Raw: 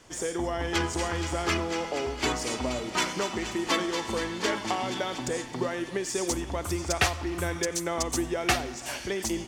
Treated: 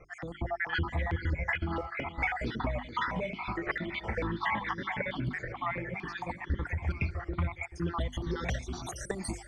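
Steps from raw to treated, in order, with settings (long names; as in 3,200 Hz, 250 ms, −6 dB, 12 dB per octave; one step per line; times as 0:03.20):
time-frequency cells dropped at random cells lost 62%
bass and treble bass +7 dB, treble −3 dB
in parallel at −7 dB: soft clipping −19.5 dBFS, distortion −18 dB
on the sum: downward compressor, threshold −27 dBFS, peak gain reduction 10.5 dB
mains-hum notches 50/100/150/200/250/300/350/400 Hz
on a send: delay that swaps between a low-pass and a high-pass 434 ms, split 2,000 Hz, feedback 57%, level −13 dB
on the sum: low-pass filter sweep 2,300 Hz → 7,900 Hz, 0:07.68–0:09.01
parametric band 2,700 Hz −14.5 dB 0.3 octaves
step-sequenced phaser 4.5 Hz 940–2,500 Hz
level +2 dB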